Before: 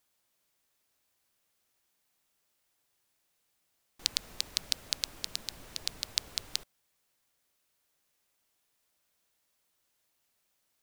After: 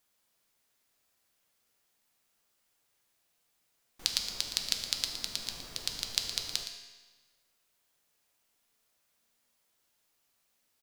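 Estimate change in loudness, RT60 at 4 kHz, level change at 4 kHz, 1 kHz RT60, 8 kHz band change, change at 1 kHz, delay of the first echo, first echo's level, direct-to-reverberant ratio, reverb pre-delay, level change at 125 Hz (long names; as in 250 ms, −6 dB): +1.5 dB, 1.2 s, +1.5 dB, 1.3 s, +1.5 dB, +2.0 dB, 116 ms, −11.5 dB, 3.0 dB, 3 ms, +1.0 dB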